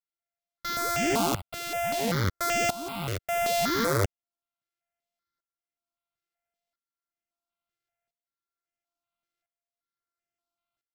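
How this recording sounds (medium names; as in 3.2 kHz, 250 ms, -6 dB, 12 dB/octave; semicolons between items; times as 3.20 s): a buzz of ramps at a fixed pitch in blocks of 64 samples; tremolo saw up 0.74 Hz, depth 85%; aliases and images of a low sample rate 9.3 kHz, jitter 0%; notches that jump at a steady rate 5.2 Hz 220–4000 Hz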